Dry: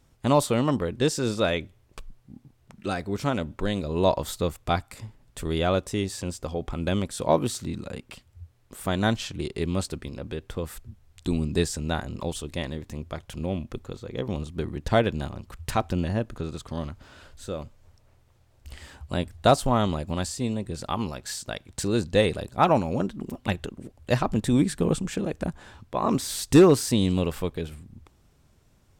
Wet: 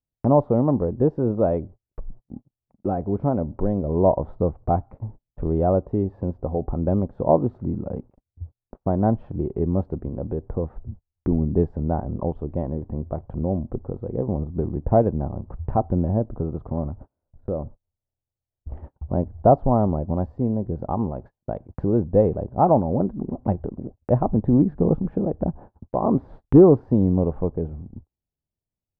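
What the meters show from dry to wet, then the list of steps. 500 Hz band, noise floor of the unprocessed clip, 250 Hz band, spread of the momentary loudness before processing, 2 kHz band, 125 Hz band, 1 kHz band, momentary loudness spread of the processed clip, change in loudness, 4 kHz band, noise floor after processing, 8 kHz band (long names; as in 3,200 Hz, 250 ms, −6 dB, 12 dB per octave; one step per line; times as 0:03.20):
+4.0 dB, −61 dBFS, +4.5 dB, 15 LU, below −15 dB, +5.0 dB, +2.0 dB, 15 LU, +3.5 dB, below −35 dB, below −85 dBFS, below −40 dB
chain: Chebyshev low-pass filter 800 Hz, order 3
noise gate −45 dBFS, range −39 dB
in parallel at +1 dB: downward compressor, threshold −38 dBFS, peak gain reduction 23.5 dB
on the sum: level +3.5 dB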